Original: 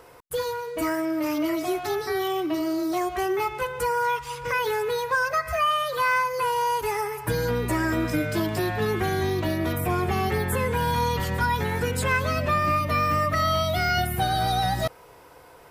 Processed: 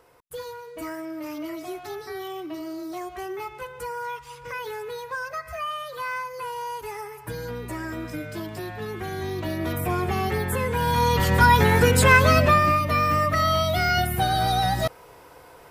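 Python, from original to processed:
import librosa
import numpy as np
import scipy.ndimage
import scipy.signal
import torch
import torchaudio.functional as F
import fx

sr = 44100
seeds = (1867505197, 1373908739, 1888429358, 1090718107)

y = fx.gain(x, sr, db=fx.line((8.93, -8.0), (9.78, -0.5), (10.71, -0.5), (11.47, 8.5), (12.37, 8.5), (12.78, 1.5)))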